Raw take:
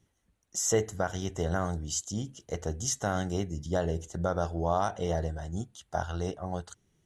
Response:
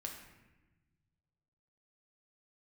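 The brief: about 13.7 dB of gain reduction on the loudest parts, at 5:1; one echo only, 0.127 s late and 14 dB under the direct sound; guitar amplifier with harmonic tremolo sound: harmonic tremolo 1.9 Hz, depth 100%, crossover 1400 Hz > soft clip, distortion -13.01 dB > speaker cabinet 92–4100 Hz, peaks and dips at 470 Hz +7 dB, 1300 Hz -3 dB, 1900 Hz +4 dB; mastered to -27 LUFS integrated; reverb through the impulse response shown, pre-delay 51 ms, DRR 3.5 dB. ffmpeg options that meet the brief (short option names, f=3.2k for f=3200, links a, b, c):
-filter_complex "[0:a]acompressor=threshold=-37dB:ratio=5,aecho=1:1:127:0.2,asplit=2[a][b];[1:a]atrim=start_sample=2205,adelay=51[c];[b][c]afir=irnorm=-1:irlink=0,volume=-1.5dB[d];[a][d]amix=inputs=2:normalize=0,acrossover=split=1400[e][f];[e]aeval=exprs='val(0)*(1-1/2+1/2*cos(2*PI*1.9*n/s))':c=same[g];[f]aeval=exprs='val(0)*(1-1/2-1/2*cos(2*PI*1.9*n/s))':c=same[h];[g][h]amix=inputs=2:normalize=0,asoftclip=threshold=-35.5dB,highpass=92,equalizer=f=470:t=q:w=4:g=7,equalizer=f=1.3k:t=q:w=4:g=-3,equalizer=f=1.9k:t=q:w=4:g=4,lowpass=f=4.1k:w=0.5412,lowpass=f=4.1k:w=1.3066,volume=19dB"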